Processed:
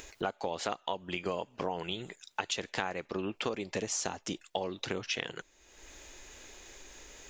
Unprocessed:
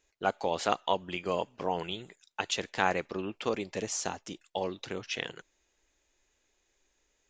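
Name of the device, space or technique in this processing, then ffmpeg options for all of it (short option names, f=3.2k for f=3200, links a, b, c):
upward and downward compression: -af "acompressor=mode=upward:threshold=-44dB:ratio=2.5,acompressor=threshold=-38dB:ratio=8,volume=7.5dB"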